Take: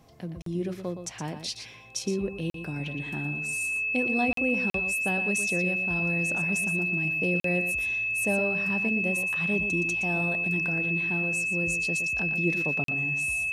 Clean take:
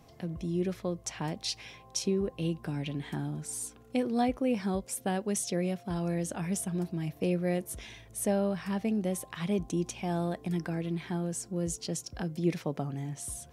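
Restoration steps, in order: notch 2600 Hz, Q 30; interpolate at 0.42/2.5/4.33/4.7/7.4/12.84, 43 ms; inverse comb 0.118 s -9 dB

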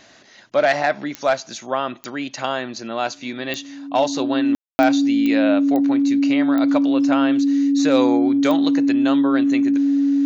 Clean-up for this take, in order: de-click; notch 280 Hz, Q 30; room tone fill 4.55–4.79

